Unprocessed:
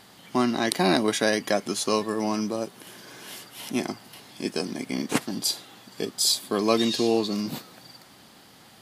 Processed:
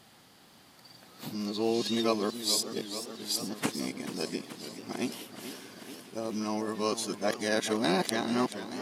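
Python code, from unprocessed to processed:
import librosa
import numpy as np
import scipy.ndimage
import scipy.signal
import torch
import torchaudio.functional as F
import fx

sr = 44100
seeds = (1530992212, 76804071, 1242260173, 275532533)

y = x[::-1].copy()
y = fx.echo_warbled(y, sr, ms=433, feedback_pct=72, rate_hz=2.8, cents=129, wet_db=-11.5)
y = F.gain(torch.from_numpy(y), -6.0).numpy()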